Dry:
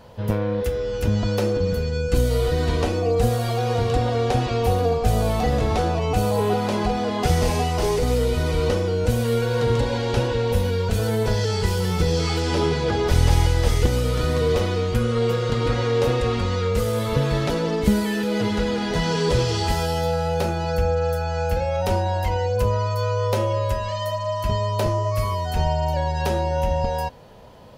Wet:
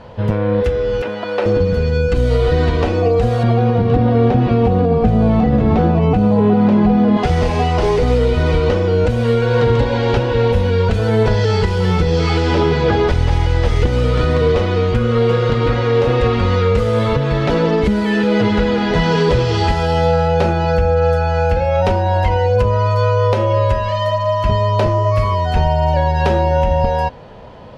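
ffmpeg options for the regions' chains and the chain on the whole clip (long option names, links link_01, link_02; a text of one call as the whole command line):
ffmpeg -i in.wav -filter_complex "[0:a]asettb=1/sr,asplit=3[link_01][link_02][link_03];[link_01]atrim=end=1.024[link_04];[link_02]atrim=start=1.02:end=1.46,asetpts=PTS-STARTPTS,afade=type=in:duration=0.004:curve=qsin,afade=type=out:start_time=0.436:duration=0.004:curve=qsin,highpass=480,lowpass=3300,acrusher=bits=6:mode=log:mix=0:aa=0.000001[link_05];[link_03]atrim=start=1.456[link_06];[link_04][link_05]acrossfade=duration=0.004:curve1=hsin:curve2=qsin[link_07];[link_07][link_06]acrossfade=duration=0.004:curve1=qsin:curve2=hsin,asettb=1/sr,asplit=3[link_08][link_09][link_10];[link_08]atrim=end=3.434[link_11];[link_09]atrim=start=3.43:end=7.17,asetpts=PTS-STARTPTS,afade=type=in:duration=0.004:curve=qsin,afade=type=out:start_time=3.736:duration=0.004:curve=qsin,lowpass=frequency=2600:poles=1,equalizer=frequency=200:width=1.1:gain=13[link_12];[link_10]atrim=start=7.166[link_13];[link_11][link_12]acrossfade=duration=0.004:curve1=hsin:curve2=qsin[link_14];[link_14][link_13]acrossfade=duration=0.004:curve1=qsin:curve2=hsin,lowpass=2600,aemphasis=mode=production:type=cd,alimiter=limit=-14dB:level=0:latency=1:release=261,volume=9dB" out.wav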